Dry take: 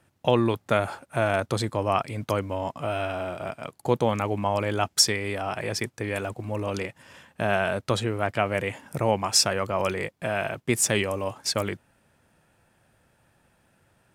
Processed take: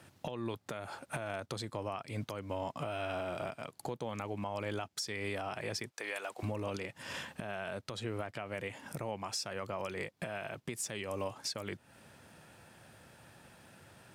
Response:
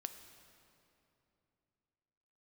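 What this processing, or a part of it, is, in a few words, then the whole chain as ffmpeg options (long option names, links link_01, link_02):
broadcast voice chain: -filter_complex "[0:a]asettb=1/sr,asplit=3[link_01][link_02][link_03];[link_01]atrim=end=5.914[link_04];[link_02]atrim=start=5.91:end=6.43,asetpts=PTS-STARTPTS,afade=type=in:duration=0.004:curve=qsin,afade=type=out:start_time=0.516:duration=0.004:curve=qsin,highpass=640[link_05];[link_03]atrim=start=6.426[link_06];[link_04][link_05]acrossfade=duration=0.004:curve1=hsin:curve2=qsin[link_07];[link_07][link_06]acrossfade=duration=0.004:curve1=qsin:curve2=hsin,highpass=78,deesser=0.3,acompressor=threshold=-40dB:ratio=5,equalizer=frequency=4400:width_type=o:width=1.2:gain=4,alimiter=level_in=9dB:limit=-24dB:level=0:latency=1:release=264,volume=-9dB,volume=6.5dB"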